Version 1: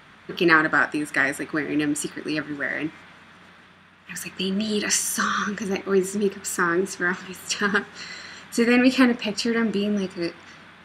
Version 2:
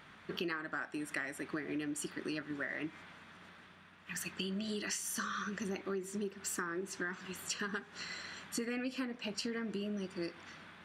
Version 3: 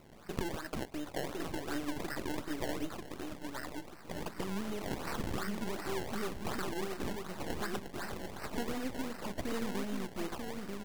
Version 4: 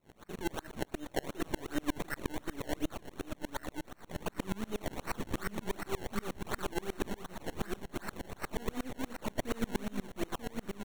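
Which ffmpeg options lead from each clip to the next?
-af "acompressor=threshold=0.0398:ratio=12,volume=0.447"
-af "aeval=exprs='if(lt(val(0),0),0.251*val(0),val(0))':c=same,aecho=1:1:940|1880|2820|3760:0.631|0.196|0.0606|0.0188,acrusher=samples=25:mix=1:aa=0.000001:lfo=1:lforange=25:lforate=2.7,volume=1.58"
-af "asuperstop=centerf=4900:order=4:qfactor=6.2,aecho=1:1:292:0.112,aeval=exprs='val(0)*pow(10,-31*if(lt(mod(-8.4*n/s,1),2*abs(-8.4)/1000),1-mod(-8.4*n/s,1)/(2*abs(-8.4)/1000),(mod(-8.4*n/s,1)-2*abs(-8.4)/1000)/(1-2*abs(-8.4)/1000))/20)':c=same,volume=2.51"

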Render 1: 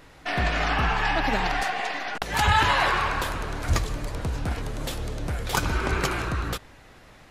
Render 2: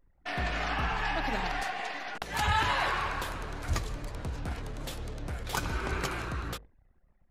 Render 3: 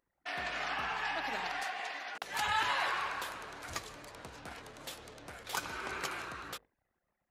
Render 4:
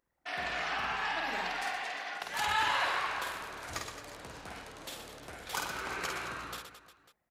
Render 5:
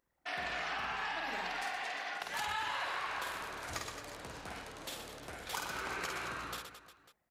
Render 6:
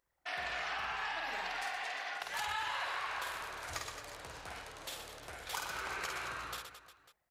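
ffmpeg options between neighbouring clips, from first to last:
-af "bandreject=f=51.3:t=h:w=4,bandreject=f=102.6:t=h:w=4,bandreject=f=153.9:t=h:w=4,bandreject=f=205.2:t=h:w=4,bandreject=f=256.5:t=h:w=4,bandreject=f=307.8:t=h:w=4,bandreject=f=359.1:t=h:w=4,bandreject=f=410.4:t=h:w=4,bandreject=f=461.7:t=h:w=4,bandreject=f=513:t=h:w=4,bandreject=f=564.3:t=h:w=4,bandreject=f=615.6:t=h:w=4,anlmdn=0.1,volume=0.447"
-af "highpass=f=650:p=1,volume=0.75"
-af "aecho=1:1:50|120|218|355.2|547.3:0.631|0.398|0.251|0.158|0.1"
-af "acompressor=threshold=0.0178:ratio=4"
-af "equalizer=f=230:w=1:g=-9"

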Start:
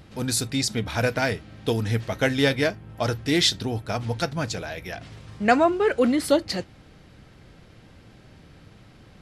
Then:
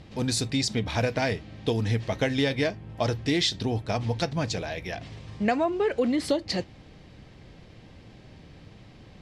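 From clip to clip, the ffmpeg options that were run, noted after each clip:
-af "lowpass=6800,equalizer=f=1400:t=o:w=0.32:g=-8.5,acompressor=threshold=0.0794:ratio=6,volume=1.12"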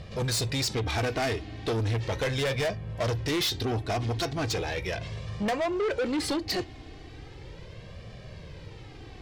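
-af "flanger=delay=1.7:depth=1.1:regen=-1:speed=0.37:shape=sinusoidal,asoftclip=type=tanh:threshold=0.0237,volume=2.51"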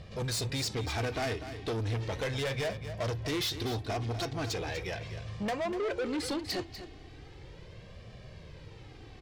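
-af "aecho=1:1:245:0.282,volume=0.562"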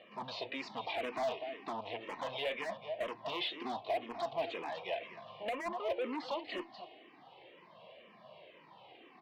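-filter_complex "[0:a]highpass=f=240:w=0.5412,highpass=f=240:w=1.3066,equalizer=f=300:t=q:w=4:g=-6,equalizer=f=430:t=q:w=4:g=-7,equalizer=f=660:t=q:w=4:g=8,equalizer=f=1000:t=q:w=4:g=9,equalizer=f=1500:t=q:w=4:g=-10,equalizer=f=2900:t=q:w=4:g=5,lowpass=f=3400:w=0.5412,lowpass=f=3400:w=1.3066,asoftclip=type=hard:threshold=0.0398,asplit=2[s0][s1];[s1]afreqshift=-2[s2];[s0][s2]amix=inputs=2:normalize=1"

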